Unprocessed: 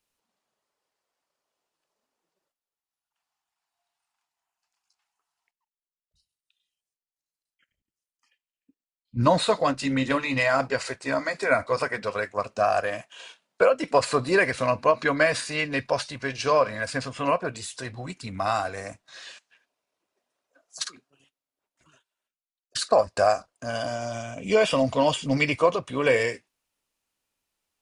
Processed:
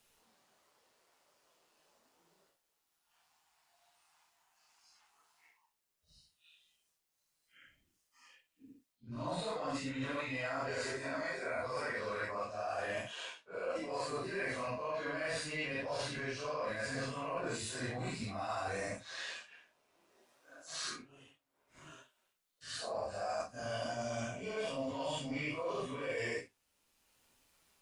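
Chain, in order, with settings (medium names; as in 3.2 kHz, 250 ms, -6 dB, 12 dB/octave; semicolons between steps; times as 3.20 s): phase randomisation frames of 200 ms; reverse; compression 16:1, threshold -34 dBFS, peak gain reduction 21 dB; reverse; AM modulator 160 Hz, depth 15%; three bands compressed up and down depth 40%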